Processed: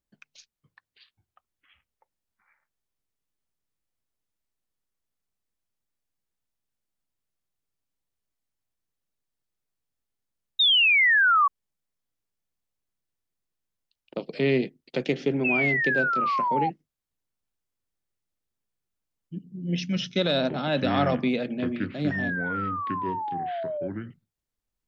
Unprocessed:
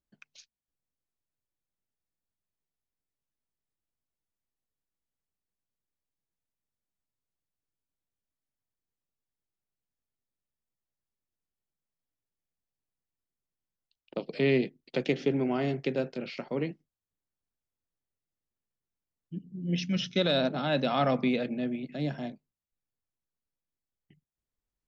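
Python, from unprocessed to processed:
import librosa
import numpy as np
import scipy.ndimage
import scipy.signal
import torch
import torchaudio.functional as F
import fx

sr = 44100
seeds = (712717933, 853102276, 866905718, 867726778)

y = fx.spec_paint(x, sr, seeds[0], shape='fall', start_s=10.59, length_s=0.89, low_hz=1100.0, high_hz=3800.0, level_db=-21.0)
y = fx.echo_pitch(y, sr, ms=464, semitones=-6, count=3, db_per_echo=-6.0)
y = y * 10.0 ** (2.0 / 20.0)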